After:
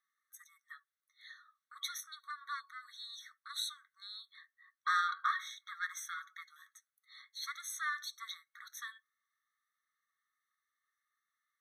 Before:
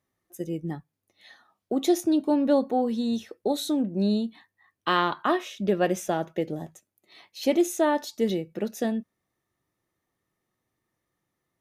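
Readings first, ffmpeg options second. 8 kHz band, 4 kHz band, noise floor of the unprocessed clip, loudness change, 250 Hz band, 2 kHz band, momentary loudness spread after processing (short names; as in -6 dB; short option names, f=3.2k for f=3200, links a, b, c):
-7.0 dB, -6.0 dB, -83 dBFS, -13.5 dB, under -40 dB, -3.0 dB, 24 LU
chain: -af "highshelf=f=4.3k:g=-6.5,asoftclip=type=tanh:threshold=-17.5dB,afftfilt=real='re*eq(mod(floor(b*sr/1024/1100),2),1)':imag='im*eq(mod(floor(b*sr/1024/1100),2),1)':win_size=1024:overlap=0.75"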